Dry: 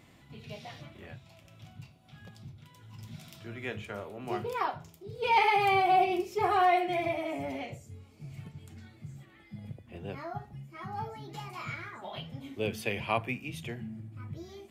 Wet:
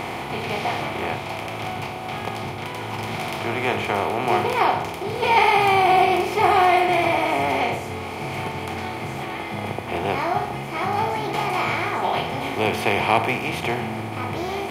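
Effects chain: spectral levelling over time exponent 0.4; trim +4.5 dB

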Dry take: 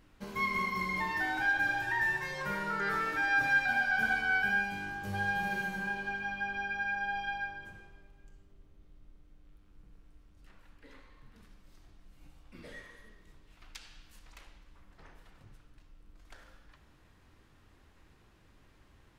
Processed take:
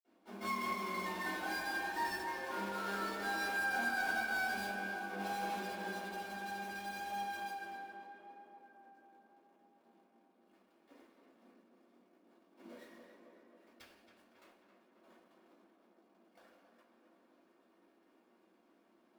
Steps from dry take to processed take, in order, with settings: square wave that keeps the level; valve stage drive 27 dB, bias 0.75; steep high-pass 210 Hz 72 dB/octave; in parallel at -10.5 dB: sample-rate reducer 9.9 kHz; on the sum: tape echo 271 ms, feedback 74%, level -5.5 dB, low-pass 2.4 kHz; reverberation, pre-delay 46 ms; trim -1.5 dB

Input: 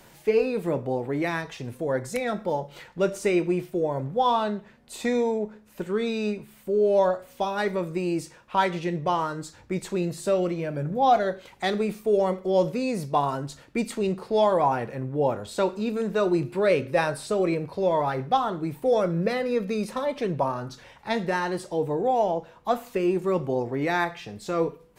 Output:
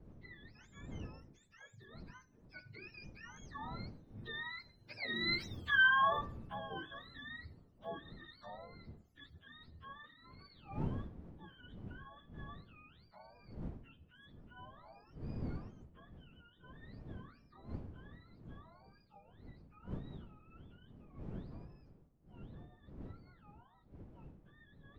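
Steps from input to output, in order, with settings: spectrum inverted on a logarithmic axis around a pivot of 860 Hz; Doppler pass-by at 5.56 s, 53 m/s, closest 6 m; wind noise 190 Hz -54 dBFS; trim +3 dB

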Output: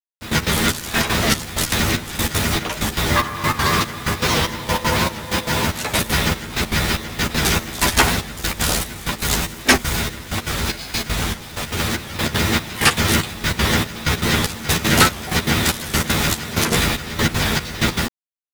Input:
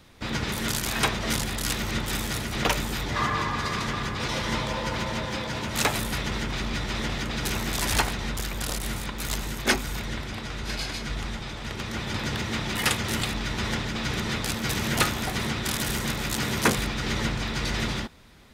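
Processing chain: on a send at -19 dB: reverberation RT60 0.35 s, pre-delay 43 ms; on the sum: word length cut 6-bit, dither none; in parallel at -6 dB: sine folder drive 9 dB, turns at -5 dBFS; on the sum: trance gate "x...x.xx" 192 bpm -12 dB; doubling 12 ms -4 dB; warped record 78 rpm, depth 100 cents

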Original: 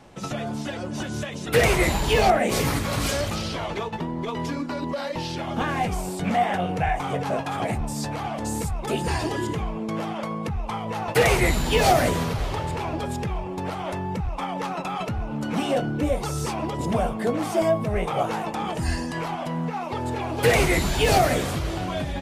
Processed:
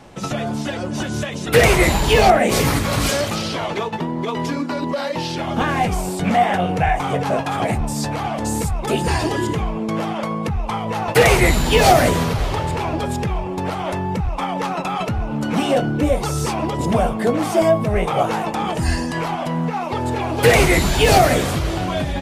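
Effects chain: 3.09–5.40 s: high-pass 120 Hz 12 dB/octave; trim +6 dB

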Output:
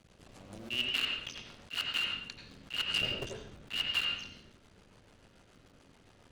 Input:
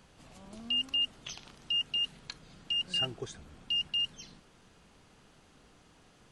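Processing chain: cycle switcher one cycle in 2, muted; rotary cabinet horn 7 Hz; on a send at -1 dB: reverberation RT60 0.60 s, pre-delay 77 ms; on the sum: attacks held to a fixed rise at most 350 dB/s; trim +2.5 dB

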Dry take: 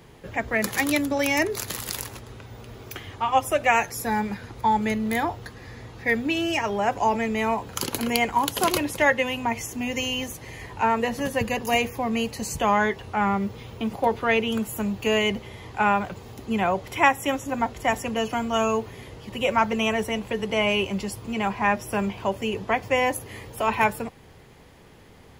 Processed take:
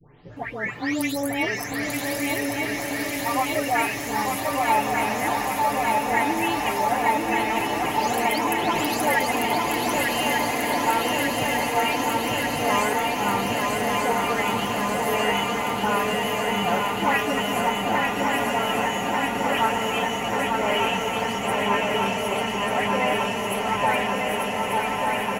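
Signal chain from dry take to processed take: delay that grows with frequency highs late, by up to 363 ms; comb 6.8 ms, depth 51%; shuffle delay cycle 1191 ms, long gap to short 3:1, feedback 77%, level -4 dB; swelling reverb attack 1660 ms, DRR 3 dB; trim -3.5 dB

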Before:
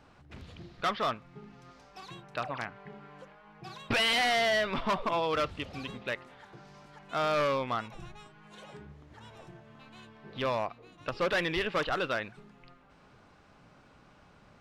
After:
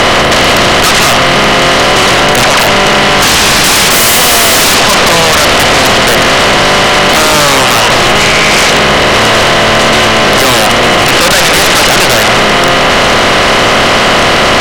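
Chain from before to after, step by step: spectral levelling over time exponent 0.2; 3.22–4.75 s: waveshaping leveller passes 2; 8.20–8.71 s: peaking EQ 2.3 kHz +11.5 dB 0.22 oct; sine folder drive 16 dB, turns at -5.5 dBFS; trim +2.5 dB

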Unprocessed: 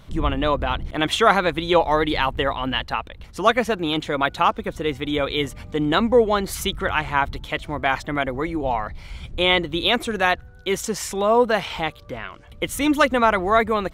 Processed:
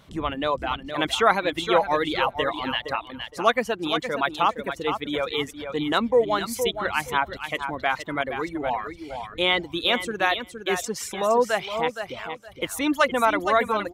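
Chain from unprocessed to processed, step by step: high-pass 190 Hz 6 dB/octave; on a send: feedback delay 466 ms, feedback 25%, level -7.5 dB; on the sum: reverb removal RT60 0.75 s; trim -2.5 dB

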